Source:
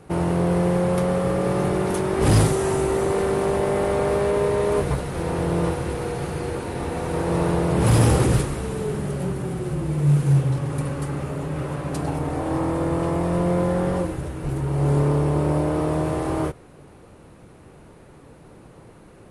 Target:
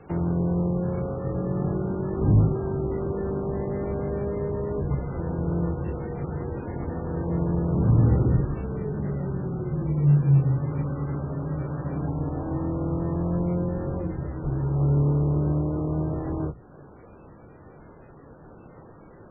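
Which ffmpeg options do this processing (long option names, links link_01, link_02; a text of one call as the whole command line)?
ffmpeg -i in.wav -filter_complex "[0:a]acrossover=split=310[link_01][link_02];[link_02]acompressor=threshold=-39dB:ratio=3[link_03];[link_01][link_03]amix=inputs=2:normalize=0,bandreject=frequency=60:width_type=h:width=6,bandreject=frequency=120:width_type=h:width=6,bandreject=frequency=180:width_type=h:width=6" -ar 11025 -c:a libmp3lame -b:a 8k out.mp3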